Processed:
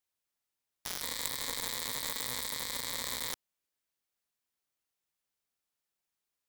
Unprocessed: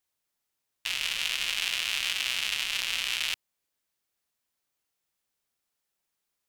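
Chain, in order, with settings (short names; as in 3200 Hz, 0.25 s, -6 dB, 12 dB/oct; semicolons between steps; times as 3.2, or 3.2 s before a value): self-modulated delay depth 0.78 ms; 1.02–3.33 ripple EQ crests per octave 1, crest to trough 10 dB; gain -5.5 dB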